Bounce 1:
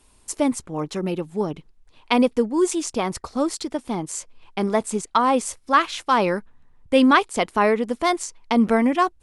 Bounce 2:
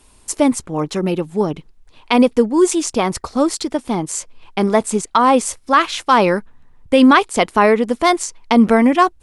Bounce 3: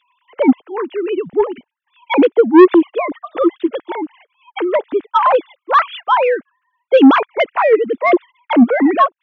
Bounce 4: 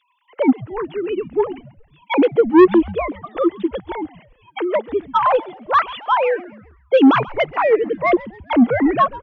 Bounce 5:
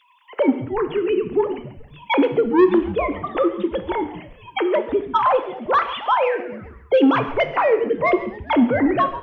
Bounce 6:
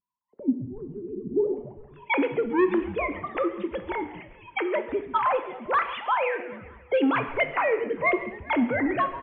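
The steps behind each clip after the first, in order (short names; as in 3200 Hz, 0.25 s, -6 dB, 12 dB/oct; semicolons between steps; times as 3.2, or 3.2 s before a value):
maximiser +7.5 dB; gain -1 dB
sine-wave speech; soft clip -5.5 dBFS, distortion -9 dB; gain +4.5 dB
frequency-shifting echo 0.135 s, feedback 49%, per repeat -140 Hz, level -19 dB; gain -3.5 dB
compressor 2:1, threshold -33 dBFS, peak gain reduction 14 dB; non-linear reverb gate 0.26 s falling, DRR 8.5 dB; gain +8.5 dB
low-pass sweep 210 Hz -> 2300 Hz, 1.21–2.13; feedback echo 0.198 s, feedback 60%, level -23 dB; gain -8 dB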